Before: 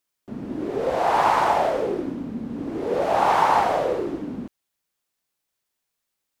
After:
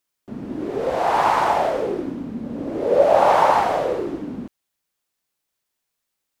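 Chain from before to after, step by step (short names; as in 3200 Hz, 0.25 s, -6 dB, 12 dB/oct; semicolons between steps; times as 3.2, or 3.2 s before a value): 2.44–3.52 bell 570 Hz +11 dB 0.4 oct; gain +1 dB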